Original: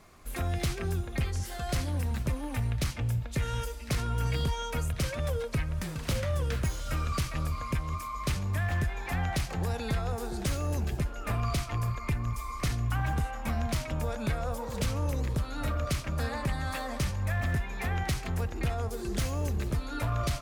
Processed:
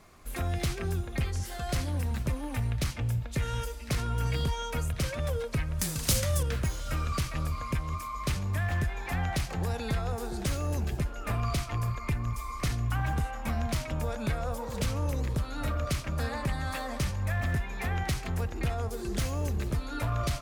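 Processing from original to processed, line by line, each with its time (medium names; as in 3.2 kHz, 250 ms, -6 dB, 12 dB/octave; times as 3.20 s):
5.79–6.43 s: tone controls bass +2 dB, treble +15 dB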